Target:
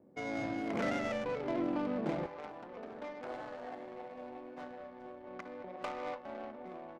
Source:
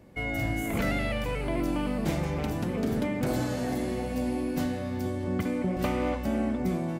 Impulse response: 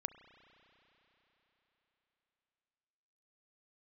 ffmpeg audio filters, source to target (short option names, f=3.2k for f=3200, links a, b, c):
-filter_complex "[0:a]asetnsamples=n=441:p=0,asendcmd='2.26 highpass f 820',highpass=260[a];[1:a]atrim=start_sample=2205,atrim=end_sample=3969[b];[a][b]afir=irnorm=-1:irlink=0,adynamicsmooth=sensitivity=4:basefreq=550"